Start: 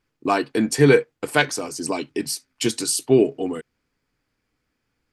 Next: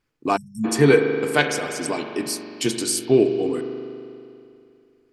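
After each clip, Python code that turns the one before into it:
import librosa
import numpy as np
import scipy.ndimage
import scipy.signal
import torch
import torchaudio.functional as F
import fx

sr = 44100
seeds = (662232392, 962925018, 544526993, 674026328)

y = fx.rev_spring(x, sr, rt60_s=2.6, pass_ms=(40,), chirp_ms=25, drr_db=5.0)
y = fx.spec_erase(y, sr, start_s=0.37, length_s=0.28, low_hz=230.0, high_hz=5300.0)
y = y * 10.0 ** (-1.0 / 20.0)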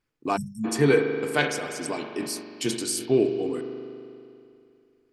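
y = fx.sustainer(x, sr, db_per_s=110.0)
y = y * 10.0 ** (-5.0 / 20.0)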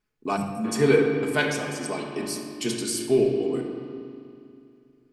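y = fx.room_shoebox(x, sr, seeds[0], volume_m3=2300.0, walls='mixed', distance_m=1.4)
y = y * 10.0 ** (-1.5 / 20.0)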